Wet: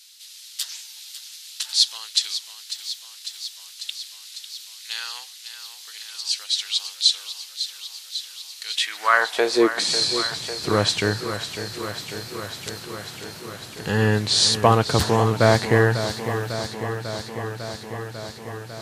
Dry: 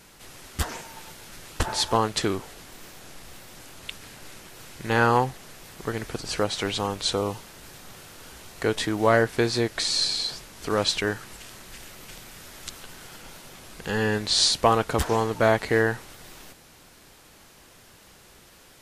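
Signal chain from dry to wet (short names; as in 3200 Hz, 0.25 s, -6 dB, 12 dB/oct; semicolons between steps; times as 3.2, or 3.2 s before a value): high-pass sweep 4000 Hz -> 110 Hz, 8.66–10.08; warbling echo 0.548 s, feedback 77%, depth 55 cents, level -11 dB; gain +2.5 dB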